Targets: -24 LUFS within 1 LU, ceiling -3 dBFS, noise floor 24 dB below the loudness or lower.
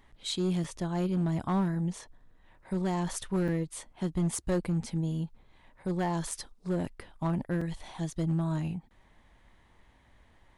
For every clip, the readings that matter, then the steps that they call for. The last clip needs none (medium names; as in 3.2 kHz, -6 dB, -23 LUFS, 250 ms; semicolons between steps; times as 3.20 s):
clipped samples 1.4%; clipping level -23.0 dBFS; dropouts 3; longest dropout 4.0 ms; loudness -32.5 LUFS; peak level -23.0 dBFS; loudness target -24.0 LUFS
-> clip repair -23 dBFS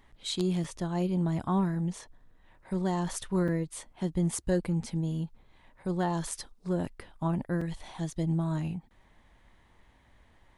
clipped samples 0.0%; dropouts 3; longest dropout 4.0 ms
-> interpolate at 0.64/3.48/7.61 s, 4 ms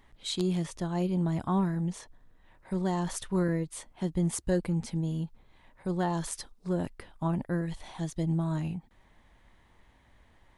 dropouts 0; loudness -32.0 LUFS; peak level -14.0 dBFS; loudness target -24.0 LUFS
-> trim +8 dB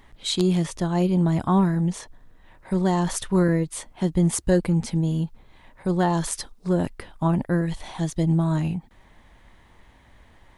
loudness -24.0 LUFS; peak level -6.0 dBFS; noise floor -54 dBFS